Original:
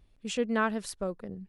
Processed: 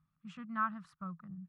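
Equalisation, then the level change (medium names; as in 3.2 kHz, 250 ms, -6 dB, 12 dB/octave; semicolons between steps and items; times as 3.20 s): two resonant band-passes 450 Hz, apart 2.9 oct; +3.5 dB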